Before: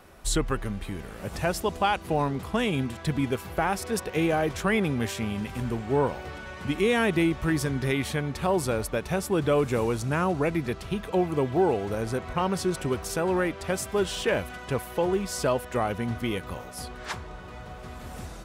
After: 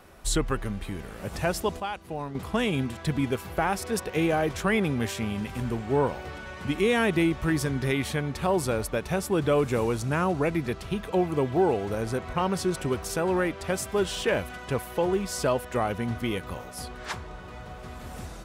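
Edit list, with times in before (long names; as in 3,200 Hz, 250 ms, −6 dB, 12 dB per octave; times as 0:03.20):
0:01.80–0:02.35: clip gain −8.5 dB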